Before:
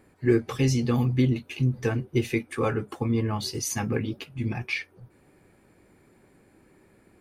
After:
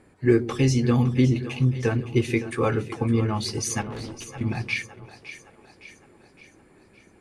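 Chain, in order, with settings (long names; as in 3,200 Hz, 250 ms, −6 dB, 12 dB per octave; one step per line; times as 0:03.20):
Chebyshev low-pass filter 10,000 Hz, order 3
0:03.81–0:04.41: tube saturation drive 36 dB, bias 0.7
on a send: echo with a time of its own for lows and highs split 370 Hz, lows 122 ms, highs 562 ms, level −13 dB
on the sum: level +2.5 dB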